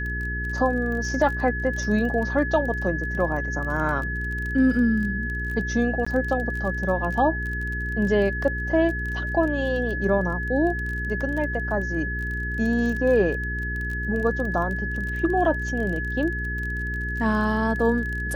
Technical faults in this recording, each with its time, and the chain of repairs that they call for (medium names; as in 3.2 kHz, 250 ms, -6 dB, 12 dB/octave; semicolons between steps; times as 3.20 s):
crackle 23 per s -30 dBFS
hum 60 Hz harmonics 7 -30 dBFS
whine 1.7 kHz -29 dBFS
6.05–6.07 s: dropout 15 ms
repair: de-click; de-hum 60 Hz, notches 7; band-stop 1.7 kHz, Q 30; interpolate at 6.05 s, 15 ms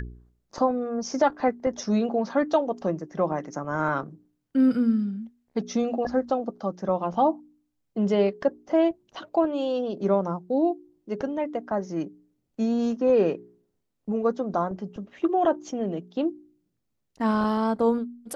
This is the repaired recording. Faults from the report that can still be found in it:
nothing left